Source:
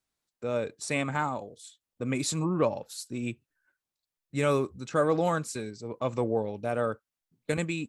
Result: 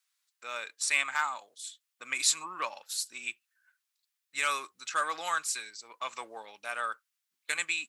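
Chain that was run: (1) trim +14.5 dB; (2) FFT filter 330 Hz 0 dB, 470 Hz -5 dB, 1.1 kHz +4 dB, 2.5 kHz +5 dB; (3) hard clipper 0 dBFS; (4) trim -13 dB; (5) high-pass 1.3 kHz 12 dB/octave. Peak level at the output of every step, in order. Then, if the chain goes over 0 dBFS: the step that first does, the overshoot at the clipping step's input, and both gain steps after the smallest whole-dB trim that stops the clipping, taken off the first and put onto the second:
+1.5 dBFS, +3.0 dBFS, 0.0 dBFS, -13.0 dBFS, -13.0 dBFS; step 1, 3.0 dB; step 1 +11.5 dB, step 4 -10 dB

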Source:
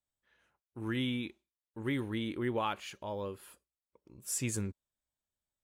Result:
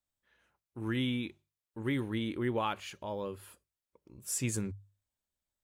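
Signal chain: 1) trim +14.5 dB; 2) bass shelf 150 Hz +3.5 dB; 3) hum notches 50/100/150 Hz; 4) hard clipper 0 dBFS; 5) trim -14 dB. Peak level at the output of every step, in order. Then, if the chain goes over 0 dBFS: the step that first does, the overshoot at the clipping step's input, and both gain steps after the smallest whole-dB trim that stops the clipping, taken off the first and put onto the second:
-6.5 dBFS, -5.5 dBFS, -5.5 dBFS, -5.5 dBFS, -19.5 dBFS; nothing clips

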